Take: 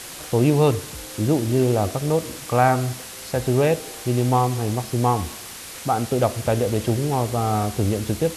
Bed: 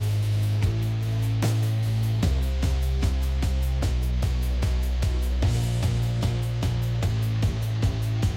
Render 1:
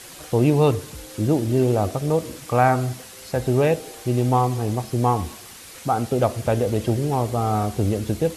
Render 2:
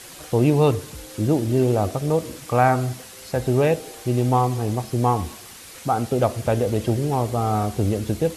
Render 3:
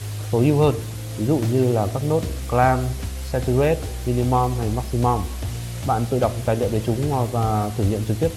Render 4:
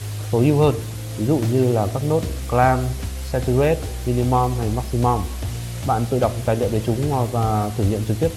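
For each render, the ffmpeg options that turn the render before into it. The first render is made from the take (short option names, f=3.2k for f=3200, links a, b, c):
-af "afftdn=nr=6:nf=-37"
-af anull
-filter_complex "[1:a]volume=-5.5dB[a];[0:a][a]amix=inputs=2:normalize=0"
-af "volume=1dB"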